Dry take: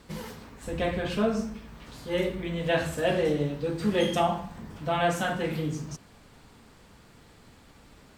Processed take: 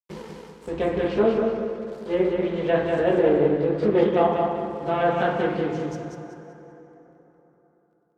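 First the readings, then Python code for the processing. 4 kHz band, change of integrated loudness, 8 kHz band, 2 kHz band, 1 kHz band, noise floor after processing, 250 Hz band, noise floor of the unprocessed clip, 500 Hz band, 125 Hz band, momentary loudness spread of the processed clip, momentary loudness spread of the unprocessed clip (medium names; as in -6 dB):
-4.5 dB, +5.5 dB, under -10 dB, +1.0 dB, +4.5 dB, -64 dBFS, +5.0 dB, -55 dBFS, +8.0 dB, +0.5 dB, 17 LU, 16 LU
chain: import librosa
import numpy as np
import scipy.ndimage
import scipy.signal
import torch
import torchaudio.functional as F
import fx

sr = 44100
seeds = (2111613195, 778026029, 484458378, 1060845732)

p1 = np.sign(x) * np.maximum(np.abs(x) - 10.0 ** (-43.0 / 20.0), 0.0)
p2 = fx.graphic_eq_15(p1, sr, hz=(100, 400, 1000), db=(-4, 12, 3))
p3 = fx.env_lowpass_down(p2, sr, base_hz=2100.0, full_db=-19.0)
p4 = scipy.signal.sosfilt(scipy.signal.butter(2, 47.0, 'highpass', fs=sr, output='sos'), p3)
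p5 = fx.high_shelf(p4, sr, hz=8500.0, db=-7.5)
p6 = p5 + fx.echo_feedback(p5, sr, ms=191, feedback_pct=34, wet_db=-3.5, dry=0)
p7 = fx.rev_plate(p6, sr, seeds[0], rt60_s=3.8, hf_ratio=0.55, predelay_ms=0, drr_db=8.0)
y = fx.doppler_dist(p7, sr, depth_ms=0.16)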